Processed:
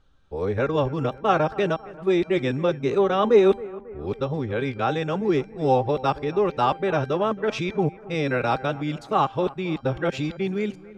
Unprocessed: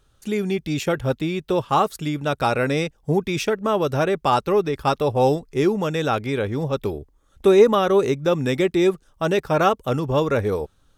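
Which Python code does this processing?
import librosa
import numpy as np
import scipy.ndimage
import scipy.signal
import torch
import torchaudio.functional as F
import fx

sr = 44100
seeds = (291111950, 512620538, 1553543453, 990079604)

y = x[::-1].copy()
y = scipy.signal.sosfilt(scipy.signal.butter(2, 4200.0, 'lowpass', fs=sr, output='sos'), y)
y = fx.comb_fb(y, sr, f0_hz=790.0, decay_s=0.43, harmonics='all', damping=0.0, mix_pct=70)
y = fx.echo_bbd(y, sr, ms=272, stages=4096, feedback_pct=53, wet_db=-19.0)
y = F.gain(torch.from_numpy(y), 7.5).numpy()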